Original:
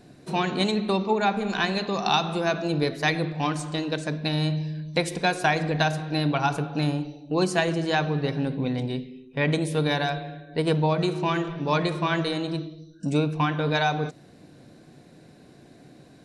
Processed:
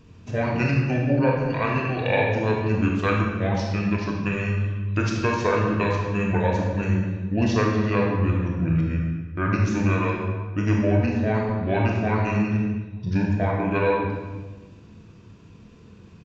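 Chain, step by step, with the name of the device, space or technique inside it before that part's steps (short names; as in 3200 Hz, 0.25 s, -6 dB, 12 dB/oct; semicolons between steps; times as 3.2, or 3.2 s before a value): monster voice (pitch shift -7.5 st; low shelf 110 Hz +4 dB; reverb RT60 1.3 s, pre-delay 24 ms, DRR -1 dB); gain -1.5 dB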